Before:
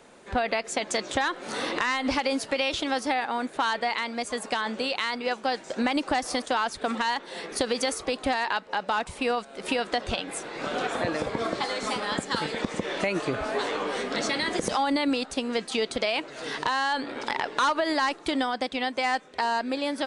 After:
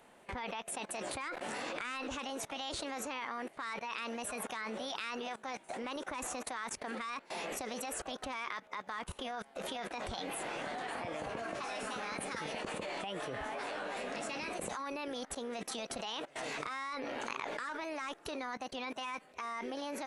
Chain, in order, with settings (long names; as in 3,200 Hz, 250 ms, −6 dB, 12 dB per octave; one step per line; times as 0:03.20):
parametric band 4,000 Hz −9.5 dB 0.48 octaves
formants moved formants +4 semitones
output level in coarse steps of 21 dB
level +2 dB